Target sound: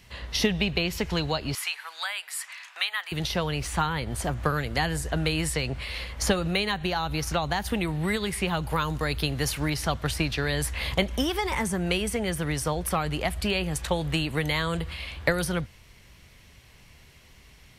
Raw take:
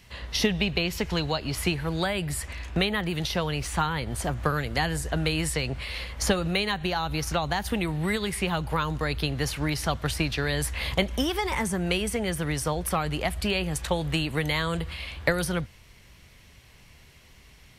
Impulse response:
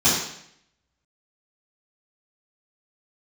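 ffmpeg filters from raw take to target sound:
-filter_complex "[0:a]asettb=1/sr,asplit=3[s0][s1][s2];[s0]atrim=end=1.554[s3];[s1]atrim=start=1.55:end=3.12,asetpts=PTS-STARTPTS,afade=t=in:d=0.004:c=qsin,afade=t=out:st=1.566:d=0.004:c=qsin,highpass=f=1000:w=0.5412,highpass=f=1000:w=1.3066[s4];[s2]atrim=start=3.116[s5];[s3][s4]acrossfade=d=0.004:c1=hsin:c2=qsin[s6];[s6][s5]acrossfade=d=0.004:c1=qsin:c2=hsin,asettb=1/sr,asplit=3[s7][s8][s9];[s7]atrim=end=8.624[s10];[s8]atrim=start=8.62:end=9.69,asetpts=PTS-STARTPTS,afade=t=in:d=0.004:c=qsin,afade=t=out:st=1.066:d=0.004:c=qsin,highshelf=f=7400:g=7.5[s11];[s9]atrim=start=9.686[s12];[s10][s11]acrossfade=d=0.004:c1=hsin:c2=qsin[s13];[s13][s12]acrossfade=d=0.004:c1=qsin:c2=hsin"

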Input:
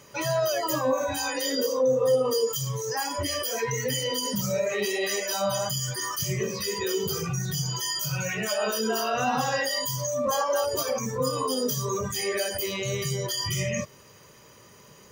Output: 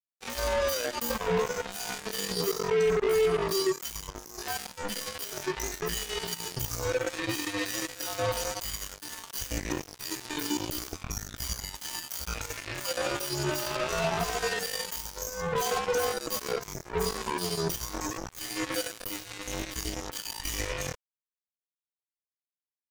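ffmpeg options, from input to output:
-af "afreqshift=-81,acrusher=bits=3:mix=0:aa=0.5,atempo=0.66,volume=0.668"

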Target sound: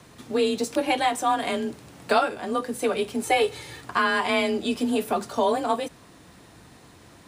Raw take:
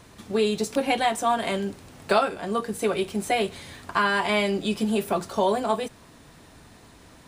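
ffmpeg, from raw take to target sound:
-filter_complex "[0:a]afreqshift=31,asettb=1/sr,asplit=3[s0][s1][s2];[s0]atrim=end=3.234[s3];[s1]atrim=start=3.23:end=3.81,asetpts=PTS-STARTPTS,afade=t=in:d=0.004:c=qsin,afade=t=out:st=0.576:d=0.004:c=qsin,aecho=1:1:2.3:0.83,atrim=end_sample=25578[s4];[s2]atrim=start=3.806[s5];[s3][s4]acrossfade=d=0.004:c1=hsin:c2=qsin[s6];[s6][s5]acrossfade=d=0.004:c1=qsin:c2=hsin"

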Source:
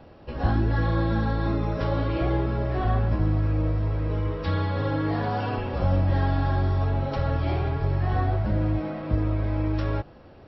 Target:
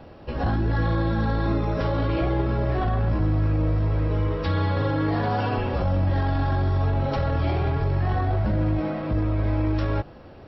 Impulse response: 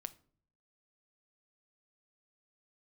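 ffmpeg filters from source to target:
-af "alimiter=limit=0.1:level=0:latency=1:release=11,volume=1.58"

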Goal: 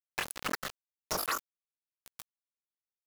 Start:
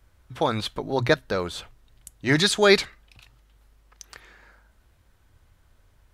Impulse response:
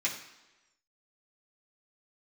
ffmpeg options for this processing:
-filter_complex "[0:a]afftfilt=real='hypot(re,im)*cos(2*PI*random(0))':imag='hypot(re,im)*sin(2*PI*random(1))':win_size=512:overlap=0.75,afftdn=nr=23:nf=-41,acrossover=split=4900[s0][s1];[s0]acontrast=70[s2];[s2][s1]amix=inputs=2:normalize=0,asetrate=88200,aresample=44100,aemphasis=mode=production:type=75kf,asetrate=66075,aresample=44100,atempo=0.66742,highshelf=f=4000:g=-10.5,asplit=2[s3][s4];[s4]aecho=0:1:868:0.188[s5];[s3][s5]amix=inputs=2:normalize=0,aeval=exprs='val(0)*gte(abs(val(0)),0.0841)':c=same,acompressor=threshold=0.0447:ratio=6,volume=0.668"

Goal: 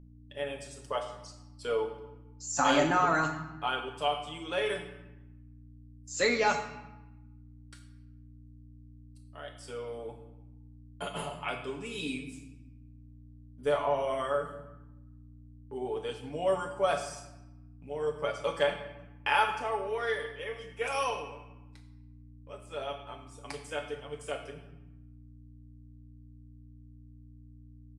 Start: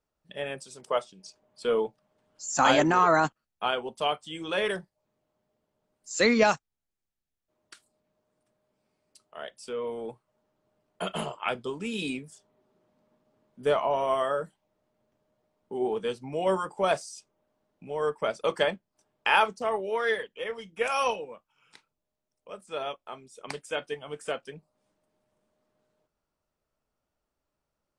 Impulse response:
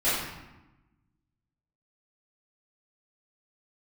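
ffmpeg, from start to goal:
-filter_complex "[0:a]agate=range=0.112:threshold=0.002:ratio=16:detection=peak,aecho=1:1:7:0.63,aeval=exprs='val(0)+0.00708*(sin(2*PI*60*n/s)+sin(2*PI*2*60*n/s)/2+sin(2*PI*3*60*n/s)/3+sin(2*PI*4*60*n/s)/4+sin(2*PI*5*60*n/s)/5)':c=same,bandreject=f=45.2:t=h:w=4,bandreject=f=90.4:t=h:w=4,bandreject=f=135.6:t=h:w=4,bandreject=f=180.8:t=h:w=4,bandreject=f=226:t=h:w=4,bandreject=f=271.2:t=h:w=4,asplit=2[s0][s1];[1:a]atrim=start_sample=2205,highshelf=f=4800:g=11.5[s2];[s1][s2]afir=irnorm=-1:irlink=0,volume=0.112[s3];[s0][s3]amix=inputs=2:normalize=0,volume=0.447"

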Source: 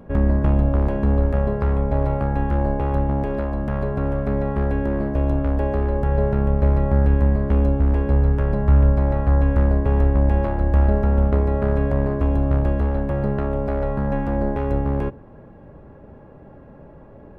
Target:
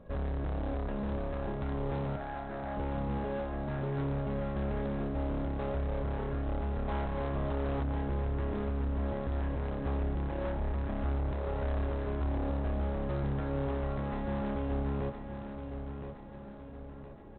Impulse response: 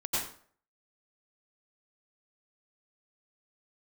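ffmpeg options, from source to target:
-filter_complex "[0:a]asettb=1/sr,asplit=3[s0][s1][s2];[s0]atrim=end=6.884[s3];[s1]atrim=start=6.88:end=7.83,asetpts=PTS-STARTPTS,afade=t=in:d=0.004:c=qsin,afade=t=out:st=0.946:d=0.004:c=qsin,equalizer=f=830:t=o:w=1.2:g=9.5[s4];[s2]atrim=start=7.826[s5];[s3][s4]acrossfade=d=0.004:c1=hsin:c2=qsin[s6];[s6][s5]acrossfade=d=0.004:c1=qsin:c2=hsin,asettb=1/sr,asplit=3[s7][s8][s9];[s7]atrim=end=8.704[s10];[s8]atrim=start=8.7:end=9.29,asetpts=PTS-STARTPTS,afade=t=in:d=0.004:c=qsin,afade=t=out:st=0.586:d=0.004:c=qsin,acompressor=threshold=0.141:ratio=2[s11];[s9]atrim=start=9.286[s12];[s10][s11]acrossfade=d=0.004:c1=hsin:c2=qsin[s13];[s13][s12]acrossfade=d=0.004:c1=qsin:c2=hsin,asoftclip=type=tanh:threshold=0.447,flanger=delay=1.6:depth=8.7:regen=39:speed=0.17:shape=triangular,asoftclip=type=hard:threshold=0.0501,asettb=1/sr,asplit=3[s14][s15][s16];[s14]atrim=end=2.164[s17];[s15]atrim=start=2.16:end=2.77,asetpts=PTS-STARTPTS,afade=t=in:d=0.004:c=qsin,afade=t=out:st=0.606:d=0.004:c=qsin,highpass=410,equalizer=f=470:t=q:w=4:g=-10,equalizer=f=700:t=q:w=4:g=7,equalizer=f=1000:t=q:w=4:g=-6,equalizer=f=1600:t=q:w=4:g=3,lowpass=f=2300:w=0.5412,lowpass=f=2300:w=1.3066[s18];[s16]atrim=start=2.766[s19];[s17][s18]acrossfade=d=0.004:c1=hsin:c2=qsin[s20];[s20][s19]acrossfade=d=0.004:c1=qsin:c2=hsin,asplit=2[s21][s22];[s22]aecho=0:1:1017|2034|3051|4068|5085:0.376|0.18|0.0866|0.0416|0.02[s23];[s21][s23]amix=inputs=2:normalize=0,volume=0.531" -ar 8000 -c:a adpcm_ima_wav

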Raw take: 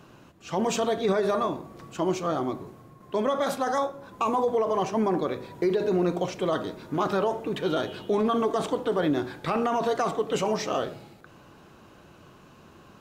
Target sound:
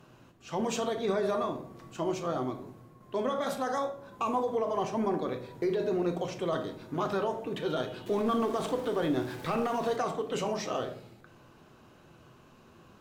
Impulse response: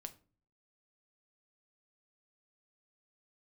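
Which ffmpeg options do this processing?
-filter_complex "[0:a]asettb=1/sr,asplit=3[s0][s1][s2];[s0]atrim=end=8.064[s3];[s1]atrim=start=8.06:end=9.96,asetpts=PTS-STARTPTS,afade=t=in:d=0.004:c=qsin,afade=t=out:st=1.896:d=0.004:c=qsin,aeval=exprs='val(0)+0.5*0.0141*sgn(val(0))':c=same[s4];[s2]atrim=start=9.956[s5];[s3][s4]acrossfade=d=0.004:c1=hsin:c2=qsin[s6];[s6][s5]acrossfade=d=0.004:c1=qsin:c2=hsin[s7];[1:a]atrim=start_sample=2205,asetrate=33516,aresample=44100[s8];[s7][s8]afir=irnorm=-1:irlink=0,volume=0.841"

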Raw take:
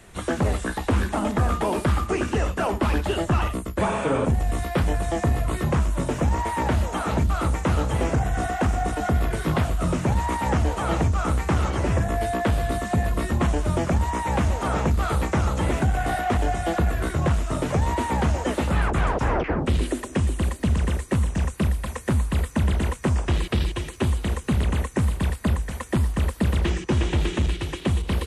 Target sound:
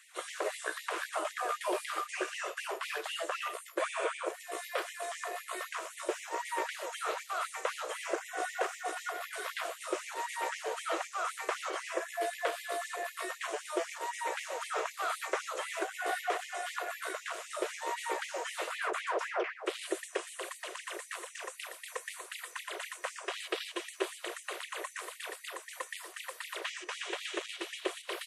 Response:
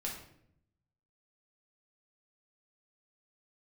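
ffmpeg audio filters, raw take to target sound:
-filter_complex "[0:a]bandreject=f=850:w=5.4,asplit=2[s0][s1];[1:a]atrim=start_sample=2205[s2];[s1][s2]afir=irnorm=-1:irlink=0,volume=0.188[s3];[s0][s3]amix=inputs=2:normalize=0,afftfilt=real='re*gte(b*sr/1024,310*pow(1900/310,0.5+0.5*sin(2*PI*3.9*pts/sr)))':imag='im*gte(b*sr/1024,310*pow(1900/310,0.5+0.5*sin(2*PI*3.9*pts/sr)))':win_size=1024:overlap=0.75,volume=0.531"

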